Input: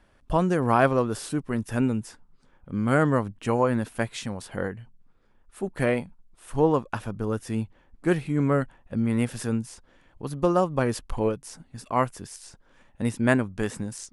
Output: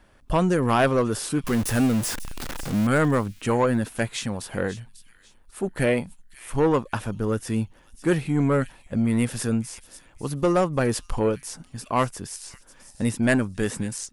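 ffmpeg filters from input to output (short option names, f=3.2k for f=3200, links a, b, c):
-filter_complex "[0:a]asettb=1/sr,asplit=3[a][b][c];[a]atrim=end=1.444[d];[b]atrim=start=1.44:end=2.87,asetpts=PTS-STARTPTS,afade=t=in:d=0.004:c=qsin,afade=t=out:st=1.426:d=0.004:c=qsin,aeval=exprs='val(0)+0.5*0.0316*sgn(val(0))':c=same[e];[c]atrim=start=2.866[f];[d][e]acrossfade=d=0.004:c1=hsin:c2=qsin[g];[g][f]acrossfade=d=0.004:c1=qsin:c2=hsin,highshelf=f=7.7k:g=4,acrossover=split=2200[h][i];[h]asoftclip=type=tanh:threshold=-17.5dB[j];[i]aecho=1:1:544|1088|1632:0.224|0.0627|0.0176[k];[j][k]amix=inputs=2:normalize=0,volume=4dB"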